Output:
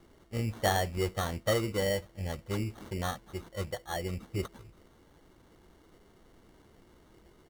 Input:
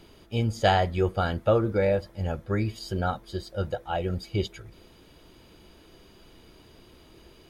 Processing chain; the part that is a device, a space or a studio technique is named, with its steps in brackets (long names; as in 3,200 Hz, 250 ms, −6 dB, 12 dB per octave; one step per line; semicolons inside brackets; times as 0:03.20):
crushed at another speed (tape speed factor 0.8×; decimation without filtering 22×; tape speed factor 1.25×)
level −6.5 dB